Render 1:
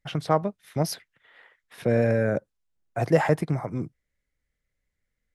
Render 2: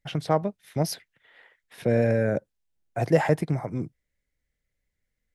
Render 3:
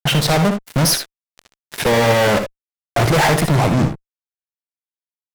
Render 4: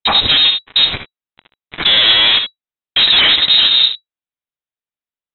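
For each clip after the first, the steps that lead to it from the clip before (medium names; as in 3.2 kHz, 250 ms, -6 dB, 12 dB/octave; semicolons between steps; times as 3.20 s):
peaking EQ 1.2 kHz -5 dB 0.55 oct
fuzz box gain 42 dB, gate -45 dBFS; early reflections 61 ms -10 dB, 76 ms -11.5 dB
frequency inversion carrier 3.9 kHz; trim +3.5 dB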